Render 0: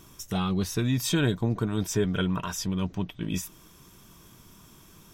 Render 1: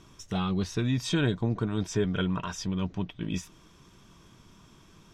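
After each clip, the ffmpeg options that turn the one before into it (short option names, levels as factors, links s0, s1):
-af "lowpass=5600,volume=0.841"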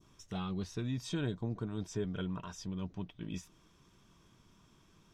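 -af "adynamicequalizer=threshold=0.00398:dfrequency=2100:dqfactor=0.76:tfrequency=2100:tqfactor=0.76:attack=5:release=100:ratio=0.375:range=2.5:mode=cutabove:tftype=bell,volume=0.355"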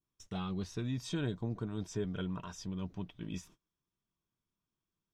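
-af "agate=range=0.0447:threshold=0.00158:ratio=16:detection=peak"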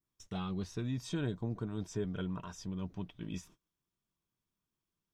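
-af "adynamicequalizer=threshold=0.00126:dfrequency=3600:dqfactor=0.8:tfrequency=3600:tqfactor=0.8:attack=5:release=100:ratio=0.375:range=1.5:mode=cutabove:tftype=bell"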